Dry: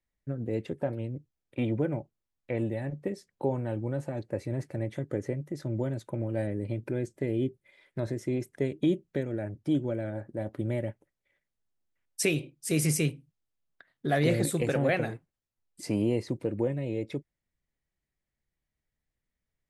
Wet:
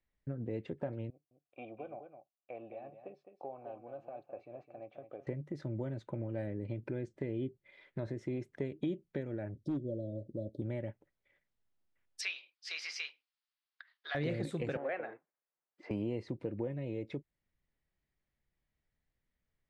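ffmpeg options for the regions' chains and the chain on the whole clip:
-filter_complex "[0:a]asettb=1/sr,asplit=3[s0][s1][s2];[s0]atrim=end=1.104[s3];[s1]atrim=start=1.1:end=5.27,asetpts=PTS-STARTPTS,afade=t=in:d=0.004:c=qsin,afade=t=out:st=4.166:d=0.004:c=qsin,asplit=3[s4][s5][s6];[s4]bandpass=f=730:t=q:w=8,volume=1[s7];[s5]bandpass=f=1090:t=q:w=8,volume=0.501[s8];[s6]bandpass=f=2440:t=q:w=8,volume=0.355[s9];[s7][s8][s9]amix=inputs=3:normalize=0,aecho=1:1:210:0.316,atrim=end_sample=183897[s10];[s2]atrim=start=5.266[s11];[s3][s10]acrossfade=d=0.004:c1=hsin:c2=qsin[s12];[s12][s11]acrossfade=d=0.004:c1=qsin:c2=hsin,asettb=1/sr,asplit=3[s13][s14][s15];[s13]atrim=end=9.564[s16];[s14]atrim=start=9.56:end=10.62,asetpts=PTS-STARTPTS,afade=t=in:d=0.004:c=qsin,afade=t=out:st=1.056:d=0.004:c=qsin,asuperstop=centerf=1500:order=20:qfactor=0.52,volume=11.2,asoftclip=hard,volume=0.0891[s17];[s15]atrim=start=10.616[s18];[s16][s17]acrossfade=d=0.004:c1=hsin:c2=qsin[s19];[s19][s18]acrossfade=d=0.004:c1=qsin:c2=hsin,asettb=1/sr,asplit=3[s20][s21][s22];[s20]atrim=end=12.214[s23];[s21]atrim=start=12.21:end=14.15,asetpts=PTS-STARTPTS,afade=t=in:d=0.004:c=qsin,afade=t=out:st=1.936:d=0.004:c=qsin,highpass=f=1000:w=0.5412,highpass=f=1000:w=1.3066,highshelf=f=6700:t=q:w=3:g=-12.5[s24];[s22]atrim=start=14.146[s25];[s23][s24]acrossfade=d=0.004:c1=hsin:c2=qsin[s26];[s26][s25]acrossfade=d=0.004:c1=qsin:c2=hsin,asettb=1/sr,asplit=3[s27][s28][s29];[s27]atrim=end=14.774[s30];[s28]atrim=start=14.77:end=15.91,asetpts=PTS-STARTPTS,afade=t=in:d=0.004:c=qsin,afade=t=out:st=1.136:d=0.004:c=qsin,highpass=240,lowpass=5600,acrossover=split=390 2400:gain=0.178 1 0.0708[s31][s32][s33];[s31][s32][s33]amix=inputs=3:normalize=0[s34];[s29]atrim=start=15.906[s35];[s30][s34]acrossfade=d=0.004:c1=hsin:c2=qsin[s36];[s36][s35]acrossfade=d=0.004:c1=qsin:c2=hsin,lowpass=3900,acompressor=threshold=0.00794:ratio=2,volume=1.12"

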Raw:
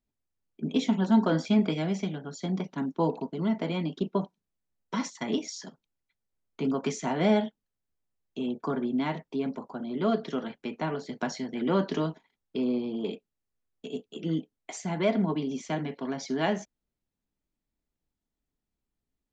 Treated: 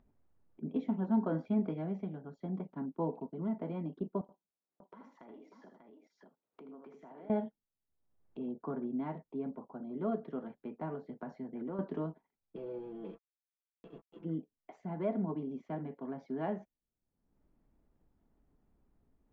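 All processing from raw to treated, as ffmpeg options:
-filter_complex "[0:a]asettb=1/sr,asplit=3[s0][s1][s2];[s0]atrim=end=4.214[s3];[s1]atrim=start=4.21:end=7.3,asetpts=PTS-STARTPTS,afade=t=in:d=0.004:c=qsin,afade=t=out:st=3.086:d=0.004:c=qsin,highpass=300,acompressor=threshold=0.00794:ratio=6:attack=3.2:release=140:knee=1:detection=peak,aecho=1:1:78|591:0.531|0.376,atrim=end_sample=136269[s4];[s2]atrim=start=7.296[s5];[s3][s4]acrossfade=d=0.004:c1=hsin:c2=qsin[s6];[s6][s5]acrossfade=d=0.004:c1=qsin:c2=hsin,asettb=1/sr,asplit=3[s7][s8][s9];[s7]atrim=end=11.184[s10];[s8]atrim=start=11.18:end=11.79,asetpts=PTS-STARTPTS,afade=t=in:d=0.004:c=qsin,afade=t=out:st=0.606:d=0.004:c=qsin,equalizer=f=3300:w=2:g=-5.5,acompressor=threshold=0.0398:ratio=5:attack=3.2:release=140:knee=1:detection=peak[s11];[s9]atrim=start=11.786[s12];[s10][s11]acrossfade=d=0.004:c1=hsin:c2=qsin[s13];[s13][s12]acrossfade=d=0.004:c1=qsin:c2=hsin,asettb=1/sr,asplit=3[s14][s15][s16];[s14]atrim=end=12.564[s17];[s15]atrim=start=12.56:end=14.25,asetpts=PTS-STARTPTS,afade=t=in:d=0.004:c=qsin,afade=t=out:st=1.686:d=0.004:c=qsin,aeval=exprs='sgn(val(0))*max(abs(val(0))-0.00376,0)':c=same,equalizer=f=250:w=0.58:g=-5.5,aecho=1:1:6:0.92,atrim=end_sample=74529[s18];[s16]atrim=start=14.246[s19];[s17][s18]acrossfade=d=0.004:c1=hsin:c2=qsin[s20];[s20][s19]acrossfade=d=0.004:c1=qsin:c2=hsin,lowpass=1100,acompressor=mode=upward:threshold=0.00631:ratio=2.5,volume=0.398"

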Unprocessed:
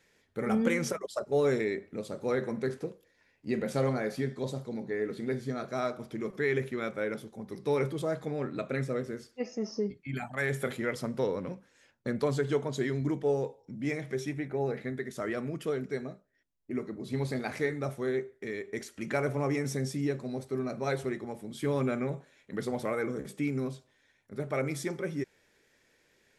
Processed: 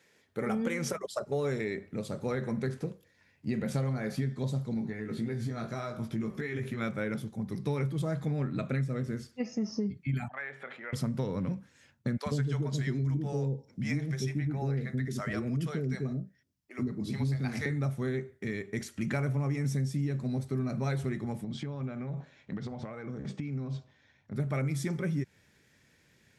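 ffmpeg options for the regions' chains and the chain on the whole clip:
-filter_complex "[0:a]asettb=1/sr,asplit=3[s0][s1][s2];[s0]atrim=end=4.744[s3];[s1]atrim=start=4.74:end=6.81,asetpts=PTS-STARTPTS,afade=t=in:d=0.004:c=qsin,afade=t=out:st=2.066:d=0.004:c=qsin,acompressor=threshold=0.0158:ratio=3:attack=3.2:release=140:knee=1:detection=peak,asplit=2[s4][s5];[s5]adelay=18,volume=0.631[s6];[s4][s6]amix=inputs=2:normalize=0,atrim=end_sample=91287[s7];[s2]atrim=start=6.806[s8];[s3][s7]acrossfade=d=0.004:c1=hsin:c2=qsin[s9];[s9][s8]acrossfade=d=0.004:c1=qsin:c2=hsin,asettb=1/sr,asplit=3[s10][s11][s12];[s10]atrim=end=10.284[s13];[s11]atrim=start=10.28:end=10.93,asetpts=PTS-STARTPTS,afade=t=in:d=0.004:c=qsin,afade=t=out:st=0.646:d=0.004:c=qsin,acompressor=threshold=0.0158:ratio=2.5:attack=3.2:release=140:knee=1:detection=peak,asuperpass=centerf=1200:order=4:qfactor=0.6[s14];[s12]atrim=start=10.926[s15];[s13][s14]acrossfade=d=0.004:c1=hsin:c2=qsin[s16];[s16][s15]acrossfade=d=0.004:c1=qsin:c2=hsin,asettb=1/sr,asplit=3[s17][s18][s19];[s17]atrim=end=12.174[s20];[s18]atrim=start=12.17:end=17.66,asetpts=PTS-STARTPTS,afade=t=in:d=0.004:c=qsin,afade=t=out:st=5.486:d=0.004:c=qsin,equalizer=f=5300:w=3.7:g=5.5,acrossover=split=520[s21][s22];[s21]adelay=90[s23];[s23][s22]amix=inputs=2:normalize=0,atrim=end_sample=242109[s24];[s19]atrim=start=17.656[s25];[s20][s24]acrossfade=d=0.004:c1=hsin:c2=qsin[s26];[s26][s25]acrossfade=d=0.004:c1=qsin:c2=hsin,asettb=1/sr,asplit=3[s27][s28][s29];[s27]atrim=end=21.444[s30];[s28]atrim=start=21.44:end=24.35,asetpts=PTS-STARTPTS,afade=t=in:d=0.004:c=qsin,afade=t=out:st=2.906:d=0.004:c=qsin,lowpass=f=6000:w=0.5412,lowpass=f=6000:w=1.3066,equalizer=f=720:t=o:w=1.2:g=6,acompressor=threshold=0.0126:ratio=16:attack=3.2:release=140:knee=1:detection=peak[s31];[s29]atrim=start=24.346[s32];[s30][s31]acrossfade=d=0.004:c1=hsin:c2=qsin[s33];[s33][s32]acrossfade=d=0.004:c1=qsin:c2=hsin,highpass=110,asubboost=boost=7.5:cutoff=150,acompressor=threshold=0.0316:ratio=5,volume=1.26"

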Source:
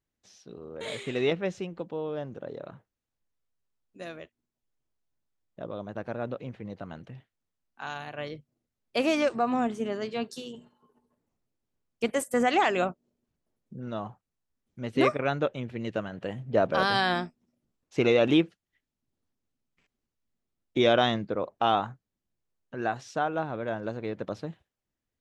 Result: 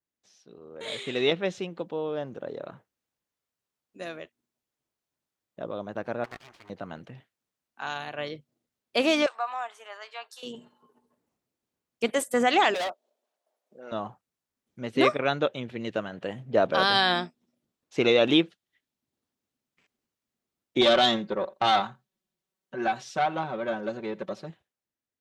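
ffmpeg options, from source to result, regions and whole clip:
-filter_complex "[0:a]asettb=1/sr,asplit=3[s0][s1][s2];[s0]atrim=end=6.244[s3];[s1]atrim=start=6.24:end=6.7,asetpts=PTS-STARTPTS,afade=t=in:d=0.004:c=qsin,afade=t=out:st=0.456:d=0.004:c=qsin,lowshelf=f=590:t=q:w=3:g=-12.5,aeval=exprs='abs(val(0))':c=same[s4];[s2]atrim=start=6.696[s5];[s3][s4]acrossfade=d=0.004:c1=hsin:c2=qsin[s6];[s6][s5]acrossfade=d=0.004:c1=qsin:c2=hsin,asettb=1/sr,asplit=3[s7][s8][s9];[s7]atrim=end=9.264[s10];[s8]atrim=start=9.26:end=10.43,asetpts=PTS-STARTPTS,afade=t=in:d=0.004:c=qsin,afade=t=out:st=1.166:d=0.004:c=qsin,highpass=f=830:w=0.5412,highpass=f=830:w=1.3066,equalizer=f=5300:t=o:w=2.5:g=-8.5[s11];[s9]atrim=start=10.426[s12];[s10][s11]acrossfade=d=0.004:c1=hsin:c2=qsin[s13];[s13][s12]acrossfade=d=0.004:c1=qsin:c2=hsin,asettb=1/sr,asplit=3[s14][s15][s16];[s14]atrim=end=12.744[s17];[s15]atrim=start=12.74:end=13.92,asetpts=PTS-STARTPTS,afade=t=in:d=0.004:c=qsin,afade=t=out:st=1.176:d=0.004:c=qsin,highpass=f=640:t=q:w=3.5,volume=31.6,asoftclip=hard,volume=0.0316[s18];[s16]atrim=start=13.916[s19];[s17][s18]acrossfade=d=0.004:c1=hsin:c2=qsin[s20];[s20][s19]acrossfade=d=0.004:c1=qsin:c2=hsin,asettb=1/sr,asplit=3[s21][s22][s23];[s21]atrim=end=20.814[s24];[s22]atrim=start=20.81:end=24.5,asetpts=PTS-STARTPTS,afade=t=in:d=0.004:c=qsin,afade=t=out:st=3.686:d=0.004:c=qsin,aecho=1:1:5.3:0.88,atrim=end_sample=162729,aeval=exprs='(tanh(7.08*val(0)+0.6)-tanh(0.6))/7.08':c=same,aecho=1:1:85:0.0668,atrim=end_sample=162729[s25];[s23]atrim=start=24.496[s26];[s24][s25]acrossfade=d=0.004:c1=hsin:c2=qsin[s27];[s27][s26]acrossfade=d=0.004:c1=qsin:c2=hsin,highpass=f=210:p=1,adynamicequalizer=threshold=0.00355:dfrequency=3600:dqfactor=2.7:tfrequency=3600:tqfactor=2.7:attack=5:release=100:ratio=0.375:range=3.5:mode=boostabove:tftype=bell,dynaudnorm=f=110:g=17:m=2.66,volume=0.562"

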